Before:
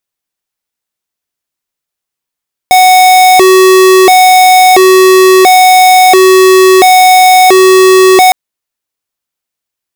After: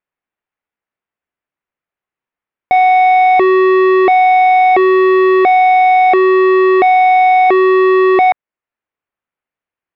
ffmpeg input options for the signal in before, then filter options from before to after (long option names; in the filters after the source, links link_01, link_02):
-f lavfi -i "aevalsrc='0.708*(2*lt(mod((558*t+183/0.73*(0.5-abs(mod(0.73*t,1)-0.5))),1),0.5)-1)':duration=5.61:sample_rate=44100"
-af "lowpass=frequency=2400:width=0.5412,lowpass=frequency=2400:width=1.3066,lowshelf=frequency=140:gain=-4.5,alimiter=limit=-5.5dB:level=0:latency=1:release=460"